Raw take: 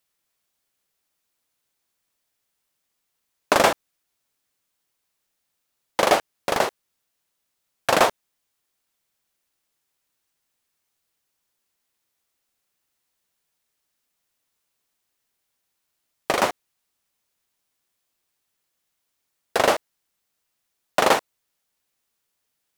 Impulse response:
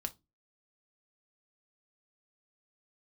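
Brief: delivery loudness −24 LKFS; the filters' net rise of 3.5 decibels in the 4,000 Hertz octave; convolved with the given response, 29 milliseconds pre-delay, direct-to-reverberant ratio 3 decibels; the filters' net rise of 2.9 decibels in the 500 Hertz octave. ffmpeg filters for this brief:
-filter_complex "[0:a]equalizer=frequency=500:width_type=o:gain=3.5,equalizer=frequency=4000:width_type=o:gain=4.5,asplit=2[link_01][link_02];[1:a]atrim=start_sample=2205,adelay=29[link_03];[link_02][link_03]afir=irnorm=-1:irlink=0,volume=-2dB[link_04];[link_01][link_04]amix=inputs=2:normalize=0,volume=-5.5dB"

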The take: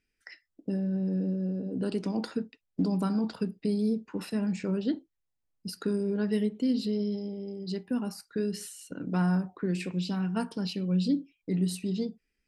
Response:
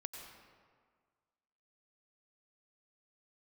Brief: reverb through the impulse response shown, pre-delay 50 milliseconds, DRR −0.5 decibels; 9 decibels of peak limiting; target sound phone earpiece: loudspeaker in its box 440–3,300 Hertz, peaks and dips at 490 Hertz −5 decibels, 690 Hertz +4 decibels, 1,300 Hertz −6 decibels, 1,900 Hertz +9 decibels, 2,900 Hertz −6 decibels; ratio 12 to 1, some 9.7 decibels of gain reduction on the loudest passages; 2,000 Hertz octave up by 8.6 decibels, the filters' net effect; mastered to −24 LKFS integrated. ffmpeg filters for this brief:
-filter_complex "[0:a]equalizer=frequency=2000:width_type=o:gain=8,acompressor=threshold=-32dB:ratio=12,alimiter=level_in=6dB:limit=-24dB:level=0:latency=1,volume=-6dB,asplit=2[link_01][link_02];[1:a]atrim=start_sample=2205,adelay=50[link_03];[link_02][link_03]afir=irnorm=-1:irlink=0,volume=3dB[link_04];[link_01][link_04]amix=inputs=2:normalize=0,highpass=440,equalizer=frequency=490:width_type=q:width=4:gain=-5,equalizer=frequency=690:width_type=q:width=4:gain=4,equalizer=frequency=1300:width_type=q:width=4:gain=-6,equalizer=frequency=1900:width_type=q:width=4:gain=9,equalizer=frequency=2900:width_type=q:width=4:gain=-6,lowpass=frequency=3300:width=0.5412,lowpass=frequency=3300:width=1.3066,volume=19.5dB"

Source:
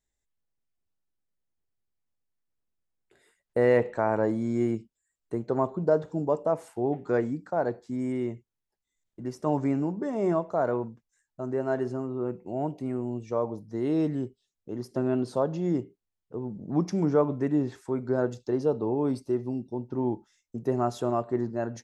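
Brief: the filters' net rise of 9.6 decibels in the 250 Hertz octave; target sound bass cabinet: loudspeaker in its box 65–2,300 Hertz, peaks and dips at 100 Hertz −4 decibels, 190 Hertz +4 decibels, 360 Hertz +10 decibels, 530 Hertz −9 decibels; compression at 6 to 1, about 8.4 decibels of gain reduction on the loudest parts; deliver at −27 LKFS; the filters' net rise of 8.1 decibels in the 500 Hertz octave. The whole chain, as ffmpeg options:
ffmpeg -i in.wav -af "equalizer=frequency=250:width_type=o:gain=5,equalizer=frequency=500:width_type=o:gain=5,acompressor=threshold=-21dB:ratio=6,highpass=frequency=65:width=0.5412,highpass=frequency=65:width=1.3066,equalizer=frequency=100:width_type=q:width=4:gain=-4,equalizer=frequency=190:width_type=q:width=4:gain=4,equalizer=frequency=360:width_type=q:width=4:gain=10,equalizer=frequency=530:width_type=q:width=4:gain=-9,lowpass=frequency=2300:width=0.5412,lowpass=frequency=2300:width=1.3066,volume=-3dB" out.wav

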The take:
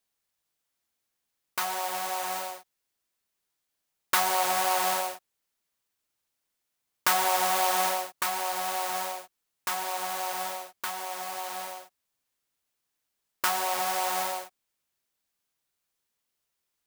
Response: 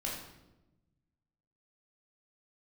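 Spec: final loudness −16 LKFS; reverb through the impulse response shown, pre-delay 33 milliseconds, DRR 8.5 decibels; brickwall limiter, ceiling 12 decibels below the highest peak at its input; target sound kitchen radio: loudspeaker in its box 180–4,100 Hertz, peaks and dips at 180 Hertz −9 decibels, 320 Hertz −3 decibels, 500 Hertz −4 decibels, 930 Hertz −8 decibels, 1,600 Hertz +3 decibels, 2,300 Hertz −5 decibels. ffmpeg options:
-filter_complex "[0:a]alimiter=limit=-20dB:level=0:latency=1,asplit=2[link_01][link_02];[1:a]atrim=start_sample=2205,adelay=33[link_03];[link_02][link_03]afir=irnorm=-1:irlink=0,volume=-11dB[link_04];[link_01][link_04]amix=inputs=2:normalize=0,highpass=180,equalizer=frequency=180:width_type=q:width=4:gain=-9,equalizer=frequency=320:width_type=q:width=4:gain=-3,equalizer=frequency=500:width_type=q:width=4:gain=-4,equalizer=frequency=930:width_type=q:width=4:gain=-8,equalizer=frequency=1600:width_type=q:width=4:gain=3,equalizer=frequency=2300:width_type=q:width=4:gain=-5,lowpass=frequency=4100:width=0.5412,lowpass=frequency=4100:width=1.3066,volume=20.5dB"

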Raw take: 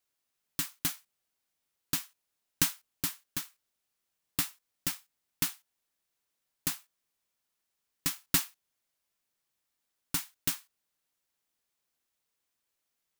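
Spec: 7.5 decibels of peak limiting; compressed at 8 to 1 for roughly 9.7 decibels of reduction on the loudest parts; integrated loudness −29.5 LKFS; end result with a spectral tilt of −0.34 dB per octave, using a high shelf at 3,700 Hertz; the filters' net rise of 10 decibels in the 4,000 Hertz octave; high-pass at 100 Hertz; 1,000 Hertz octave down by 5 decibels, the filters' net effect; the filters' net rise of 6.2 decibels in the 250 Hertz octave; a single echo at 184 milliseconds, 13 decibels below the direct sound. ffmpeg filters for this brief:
ffmpeg -i in.wav -af "highpass=100,equalizer=frequency=250:width_type=o:gain=8.5,equalizer=frequency=1000:width_type=o:gain=-8.5,highshelf=frequency=3700:gain=6.5,equalizer=frequency=4000:width_type=o:gain=8.5,acompressor=threshold=-24dB:ratio=8,alimiter=limit=-12.5dB:level=0:latency=1,aecho=1:1:184:0.224,volume=5dB" out.wav

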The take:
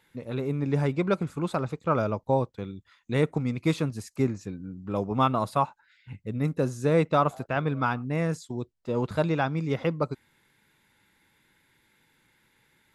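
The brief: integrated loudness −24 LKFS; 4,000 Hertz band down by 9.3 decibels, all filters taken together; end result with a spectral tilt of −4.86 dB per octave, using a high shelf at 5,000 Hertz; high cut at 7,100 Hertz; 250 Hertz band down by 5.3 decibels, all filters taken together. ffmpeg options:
ffmpeg -i in.wav -af "lowpass=7100,equalizer=frequency=250:width_type=o:gain=-8,equalizer=frequency=4000:width_type=o:gain=-9,highshelf=frequency=5000:gain=-5.5,volume=6.5dB" out.wav

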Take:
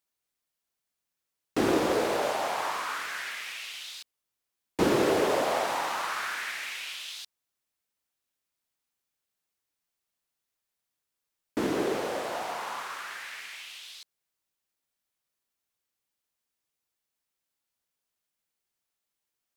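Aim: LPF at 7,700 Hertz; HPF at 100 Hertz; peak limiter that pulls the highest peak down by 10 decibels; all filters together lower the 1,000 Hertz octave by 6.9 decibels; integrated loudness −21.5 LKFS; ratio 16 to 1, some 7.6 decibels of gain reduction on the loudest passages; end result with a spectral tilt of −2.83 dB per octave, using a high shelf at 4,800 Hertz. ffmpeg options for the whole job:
ffmpeg -i in.wav -af "highpass=100,lowpass=7700,equalizer=frequency=1000:width_type=o:gain=-9,highshelf=frequency=4800:gain=-6.5,acompressor=threshold=-29dB:ratio=16,volume=18.5dB,alimiter=limit=-12dB:level=0:latency=1" out.wav

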